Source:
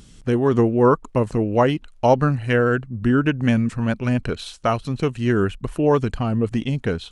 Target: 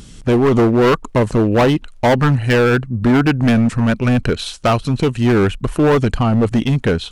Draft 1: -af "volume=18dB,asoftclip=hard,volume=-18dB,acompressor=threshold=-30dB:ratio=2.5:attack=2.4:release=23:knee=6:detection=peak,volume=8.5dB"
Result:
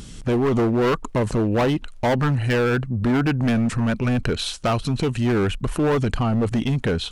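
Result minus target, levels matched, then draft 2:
downward compressor: peak gain reduction +7 dB
-af "volume=18dB,asoftclip=hard,volume=-18dB,volume=8.5dB"

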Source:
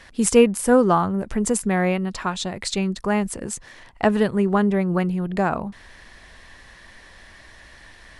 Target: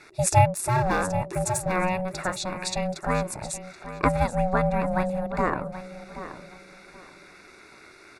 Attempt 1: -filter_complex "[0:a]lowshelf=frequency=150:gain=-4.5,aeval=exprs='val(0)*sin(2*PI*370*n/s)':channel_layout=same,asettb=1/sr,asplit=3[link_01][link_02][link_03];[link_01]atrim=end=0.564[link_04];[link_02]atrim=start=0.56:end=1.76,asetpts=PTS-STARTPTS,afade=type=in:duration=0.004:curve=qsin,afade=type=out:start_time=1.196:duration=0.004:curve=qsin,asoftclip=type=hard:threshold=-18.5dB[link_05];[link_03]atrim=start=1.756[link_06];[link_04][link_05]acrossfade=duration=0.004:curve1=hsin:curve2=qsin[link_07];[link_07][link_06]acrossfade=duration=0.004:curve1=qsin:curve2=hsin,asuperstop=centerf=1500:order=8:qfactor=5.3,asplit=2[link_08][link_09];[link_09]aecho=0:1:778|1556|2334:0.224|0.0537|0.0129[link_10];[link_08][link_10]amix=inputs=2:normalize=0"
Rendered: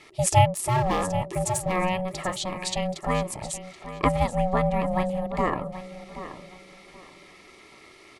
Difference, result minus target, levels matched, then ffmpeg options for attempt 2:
4,000 Hz band +3.0 dB
-filter_complex "[0:a]lowshelf=frequency=150:gain=-4.5,aeval=exprs='val(0)*sin(2*PI*370*n/s)':channel_layout=same,asettb=1/sr,asplit=3[link_01][link_02][link_03];[link_01]atrim=end=0.564[link_04];[link_02]atrim=start=0.56:end=1.76,asetpts=PTS-STARTPTS,afade=type=in:duration=0.004:curve=qsin,afade=type=out:start_time=1.196:duration=0.004:curve=qsin,asoftclip=type=hard:threshold=-18.5dB[link_05];[link_03]atrim=start=1.756[link_06];[link_04][link_05]acrossfade=duration=0.004:curve1=hsin:curve2=qsin[link_07];[link_07][link_06]acrossfade=duration=0.004:curve1=qsin:curve2=hsin,asuperstop=centerf=3100:order=8:qfactor=5.3,asplit=2[link_08][link_09];[link_09]aecho=0:1:778|1556|2334:0.224|0.0537|0.0129[link_10];[link_08][link_10]amix=inputs=2:normalize=0"

